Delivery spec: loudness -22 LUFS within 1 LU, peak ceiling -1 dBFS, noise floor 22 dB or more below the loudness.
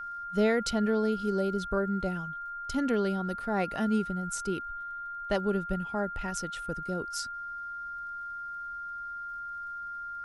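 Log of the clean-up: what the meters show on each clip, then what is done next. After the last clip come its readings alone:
ticks 27/s; steady tone 1400 Hz; tone level -36 dBFS; loudness -32.0 LUFS; peak -14.0 dBFS; loudness target -22.0 LUFS
-> de-click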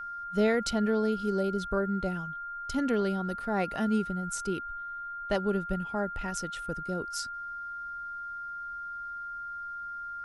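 ticks 0/s; steady tone 1400 Hz; tone level -36 dBFS
-> notch 1400 Hz, Q 30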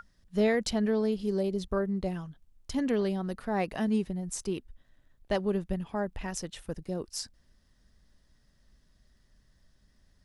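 steady tone none; loudness -31.5 LUFS; peak -14.5 dBFS; loudness target -22.0 LUFS
-> gain +9.5 dB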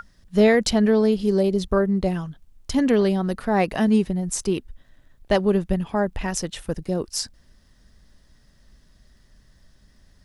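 loudness -22.0 LUFS; peak -5.0 dBFS; noise floor -57 dBFS

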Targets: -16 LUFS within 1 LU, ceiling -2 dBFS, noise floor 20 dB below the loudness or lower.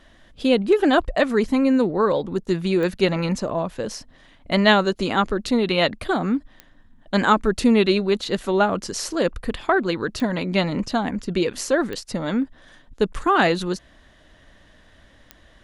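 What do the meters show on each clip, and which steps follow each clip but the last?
clicks 5; loudness -21.5 LUFS; peak -3.0 dBFS; loudness target -16.0 LUFS
-> de-click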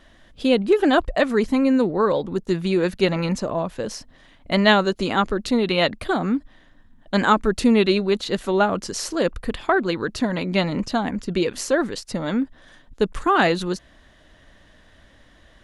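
clicks 0; loudness -21.5 LUFS; peak -3.0 dBFS; loudness target -16.0 LUFS
-> gain +5.5 dB; limiter -2 dBFS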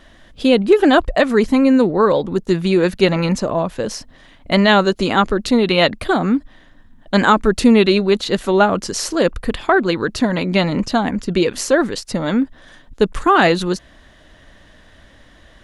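loudness -16.5 LUFS; peak -2.0 dBFS; noise floor -48 dBFS

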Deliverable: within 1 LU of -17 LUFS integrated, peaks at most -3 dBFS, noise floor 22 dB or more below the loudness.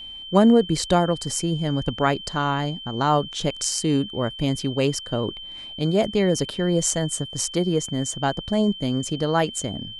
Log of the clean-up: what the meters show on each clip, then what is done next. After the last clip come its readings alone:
steady tone 3100 Hz; tone level -35 dBFS; loudness -23.0 LUFS; peak -4.0 dBFS; loudness target -17.0 LUFS
-> notch 3100 Hz, Q 30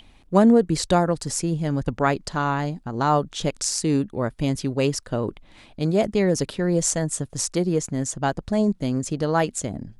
steady tone none; loudness -23.0 LUFS; peak -4.5 dBFS; loudness target -17.0 LUFS
-> gain +6 dB; limiter -3 dBFS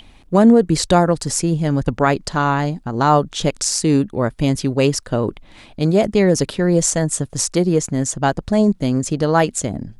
loudness -17.5 LUFS; peak -3.0 dBFS; noise floor -46 dBFS

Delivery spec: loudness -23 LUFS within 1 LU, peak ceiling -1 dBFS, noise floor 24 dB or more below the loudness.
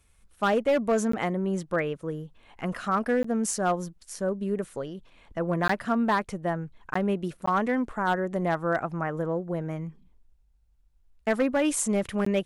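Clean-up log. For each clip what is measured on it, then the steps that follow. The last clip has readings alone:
clipped 0.7%; flat tops at -17.5 dBFS; dropouts 6; longest dropout 14 ms; loudness -28.0 LUFS; peak -17.5 dBFS; loudness target -23.0 LUFS
-> clip repair -17.5 dBFS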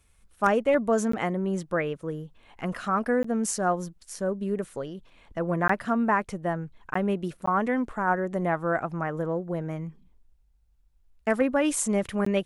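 clipped 0.0%; dropouts 6; longest dropout 14 ms
-> interpolate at 1.12/3.23/5.68/6.94/7.46/12.25, 14 ms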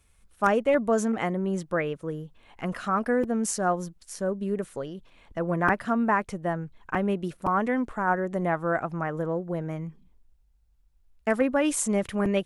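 dropouts 0; loudness -27.5 LUFS; peak -8.5 dBFS; loudness target -23.0 LUFS
-> gain +4.5 dB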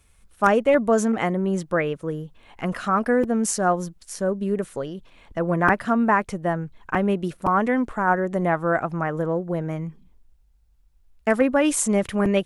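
loudness -23.0 LUFS; peak -4.0 dBFS; noise floor -58 dBFS

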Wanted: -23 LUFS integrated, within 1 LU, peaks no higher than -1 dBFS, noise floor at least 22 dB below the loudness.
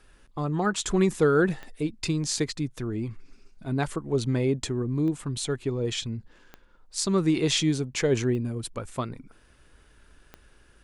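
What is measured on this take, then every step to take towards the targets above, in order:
clicks 5; loudness -27.0 LUFS; peak -11.0 dBFS; loudness target -23.0 LUFS
-> de-click; gain +4 dB

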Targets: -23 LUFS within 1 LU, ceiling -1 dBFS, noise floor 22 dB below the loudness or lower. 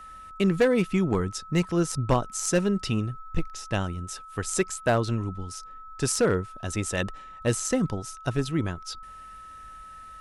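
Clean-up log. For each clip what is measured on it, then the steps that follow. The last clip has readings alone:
clipped 0.3%; flat tops at -14.5 dBFS; steady tone 1300 Hz; tone level -42 dBFS; loudness -27.5 LUFS; peak -14.5 dBFS; loudness target -23.0 LUFS
-> clip repair -14.5 dBFS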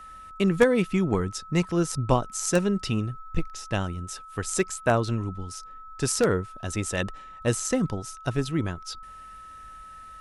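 clipped 0.0%; steady tone 1300 Hz; tone level -42 dBFS
-> notch 1300 Hz, Q 30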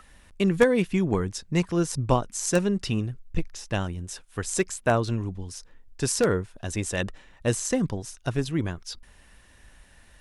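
steady tone none; loudness -27.0 LUFS; peak -5.5 dBFS; loudness target -23.0 LUFS
-> gain +4 dB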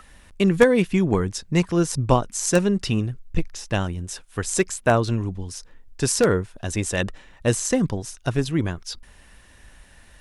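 loudness -23.0 LUFS; peak -1.5 dBFS; noise floor -51 dBFS

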